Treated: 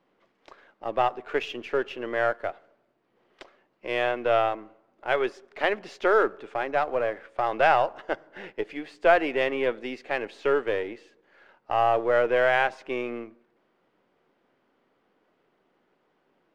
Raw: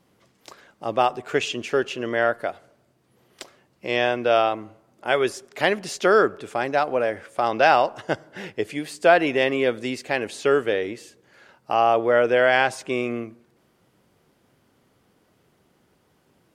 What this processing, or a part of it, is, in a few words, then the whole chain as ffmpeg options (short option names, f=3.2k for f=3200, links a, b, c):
crystal radio: -af "highpass=290,lowpass=2.7k,aeval=exprs='if(lt(val(0),0),0.708*val(0),val(0))':c=same,volume=-2dB"